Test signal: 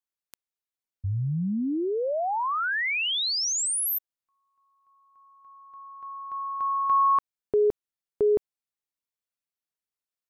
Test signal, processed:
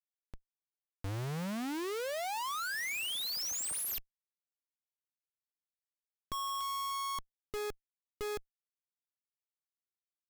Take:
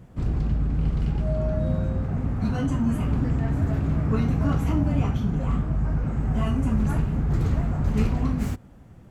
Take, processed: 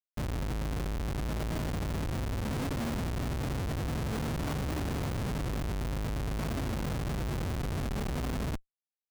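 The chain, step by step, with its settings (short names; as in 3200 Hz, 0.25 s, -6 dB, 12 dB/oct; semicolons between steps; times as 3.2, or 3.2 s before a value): tube stage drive 17 dB, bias 0.7; dynamic EQ 1100 Hz, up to +3 dB, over -41 dBFS, Q 1.6; Schmitt trigger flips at -33 dBFS; gain -5 dB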